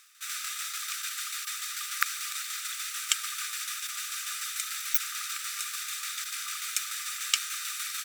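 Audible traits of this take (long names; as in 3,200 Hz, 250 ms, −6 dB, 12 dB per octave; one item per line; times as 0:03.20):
tremolo saw down 6.8 Hz, depth 45%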